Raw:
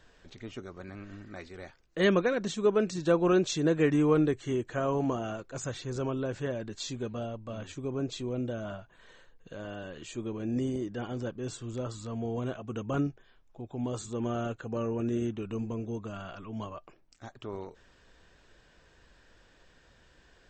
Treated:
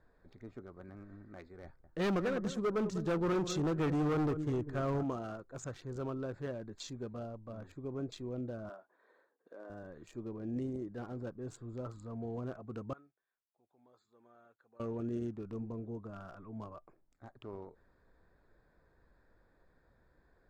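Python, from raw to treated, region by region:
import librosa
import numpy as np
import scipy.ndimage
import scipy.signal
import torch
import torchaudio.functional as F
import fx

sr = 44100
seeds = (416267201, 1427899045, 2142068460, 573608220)

y = fx.chain(x, sr, fx.low_shelf(hz=170.0, db=11.0),
    fx.echo_bbd(ms=197, stages=2048, feedback_pct=35, wet_db=-12.5),
    fx.clip_hard(threshold_db=-22.5), at=(1.64, 5.03))
y = fx.chain(y, sr, fx.highpass(hz=300.0, slope=24),
    fx.high_shelf(hz=4700.0, db=-6.0), at=(8.69, 9.7))
y = fx.chain(y, sr, fx.bandpass_q(hz=6800.0, q=0.89),
    fx.air_absorb(metres=180.0), at=(12.93, 14.8))
y = fx.wiener(y, sr, points=15)
y = fx.dynamic_eq(y, sr, hz=1300.0, q=6.9, threshold_db=-55.0, ratio=4.0, max_db=6)
y = F.gain(torch.from_numpy(y), -6.5).numpy()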